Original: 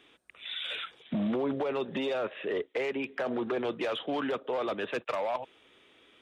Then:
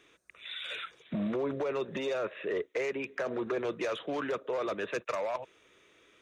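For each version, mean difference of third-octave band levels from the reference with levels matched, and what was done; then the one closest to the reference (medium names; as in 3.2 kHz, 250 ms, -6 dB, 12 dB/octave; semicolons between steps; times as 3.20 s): 1.5 dB: graphic EQ with 31 bands 250 Hz -8 dB, 800 Hz -8 dB, 3.15 kHz -8 dB, 6.3 kHz +10 dB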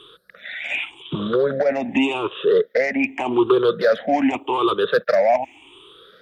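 5.0 dB: drifting ripple filter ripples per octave 0.64, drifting +0.85 Hz, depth 24 dB; trim +6.5 dB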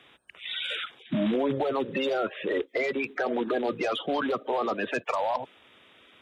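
2.5 dB: coarse spectral quantiser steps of 30 dB; trim +4.5 dB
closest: first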